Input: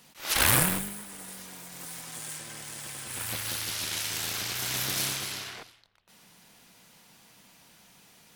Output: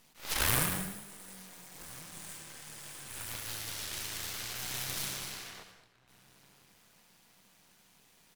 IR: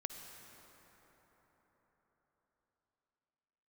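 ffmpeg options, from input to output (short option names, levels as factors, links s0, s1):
-filter_complex "[0:a]asplit=2[s0][s1];[s1]adelay=1399,volume=0.1,highshelf=f=4000:g=-31.5[s2];[s0][s2]amix=inputs=2:normalize=0,aeval=exprs='max(val(0),0)':c=same[s3];[1:a]atrim=start_sample=2205,afade=t=out:st=0.29:d=0.01,atrim=end_sample=13230[s4];[s3][s4]afir=irnorm=-1:irlink=0"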